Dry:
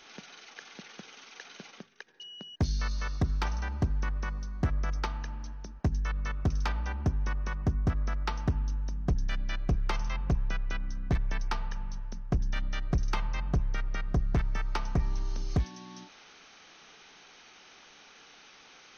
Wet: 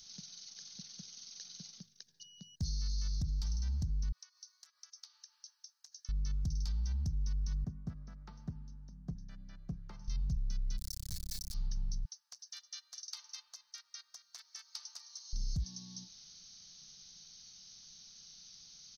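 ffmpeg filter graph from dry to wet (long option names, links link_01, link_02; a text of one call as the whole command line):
ffmpeg -i in.wav -filter_complex "[0:a]asettb=1/sr,asplit=3[link_01][link_02][link_03];[link_01]atrim=end=4.124[link_04];[link_02]atrim=start=4.12:end=6.09,asetpts=PTS-STARTPTS,afade=type=in:duration=0.004:curve=qsin,afade=type=out:start_time=1.966:duration=0.004:curve=qsin,highpass=frequency=1100:width=0.5412,highpass=frequency=1100:width=1.3066,acompressor=threshold=-52dB:ratio=2.5:attack=3.2:release=140:knee=1:detection=peak[link_05];[link_03]atrim=start=6.086[link_06];[link_04][link_05]acrossfade=duration=0.004:curve1=hsin:curve2=qsin[link_07];[link_07][link_06]acrossfade=duration=0.004:curve1=qsin:curve2=hsin,asettb=1/sr,asplit=3[link_08][link_09][link_10];[link_08]atrim=end=7.644[link_11];[link_09]atrim=start=7.64:end=10.08,asetpts=PTS-STARTPTS,afade=type=in:duration=0.004:curve=qsin,afade=type=out:start_time=2.436:duration=0.004:curve=qsin,acrossover=split=2700[link_12][link_13];[link_13]acompressor=threshold=-51dB:ratio=4:attack=1:release=60[link_14];[link_12][link_14]amix=inputs=2:normalize=0,acrossover=split=200 2100:gain=0.0891 1 0.126[link_15][link_16][link_17];[link_15][link_16][link_17]amix=inputs=3:normalize=0[link_18];[link_10]atrim=start=10.076[link_19];[link_11][link_18]acrossfade=duration=0.004:curve1=hsin:curve2=qsin[link_20];[link_20][link_19]acrossfade=duration=0.004:curve1=qsin:curve2=hsin,asettb=1/sr,asplit=3[link_21][link_22][link_23];[link_21]atrim=end=10.784[link_24];[link_22]atrim=start=10.78:end=11.54,asetpts=PTS-STARTPTS,afade=type=in:duration=0.004:curve=qsin,afade=type=out:start_time=0.756:duration=0.004:curve=qsin,tiltshelf=frequency=840:gain=-9.5,acrusher=bits=4:dc=4:mix=0:aa=0.000001[link_25];[link_23]atrim=start=11.536[link_26];[link_24][link_25]acrossfade=duration=0.004:curve1=hsin:curve2=qsin[link_27];[link_27][link_26]acrossfade=duration=0.004:curve1=qsin:curve2=hsin,asettb=1/sr,asplit=3[link_28][link_29][link_30];[link_28]atrim=end=12.054[link_31];[link_29]atrim=start=12.05:end=15.33,asetpts=PTS-STARTPTS,afade=type=in:duration=0.004:curve=qsin,afade=type=out:start_time=3.276:duration=0.004:curve=qsin,highpass=frequency=960:width=0.5412,highpass=frequency=960:width=1.3066,aecho=1:1:212:0.251,atrim=end_sample=144648[link_32];[link_30]atrim=start=15.326[link_33];[link_31][link_32]acrossfade=duration=0.004:curve1=hsin:curve2=qsin[link_34];[link_34][link_33]acrossfade=duration=0.004:curve1=qsin:curve2=hsin,firequalizer=gain_entry='entry(160,0);entry(310,-22);entry(990,-24);entry(2500,-20);entry(4400,5)':delay=0.05:min_phase=1,alimiter=level_in=5.5dB:limit=-24dB:level=0:latency=1:release=83,volume=-5.5dB,volume=1dB" out.wav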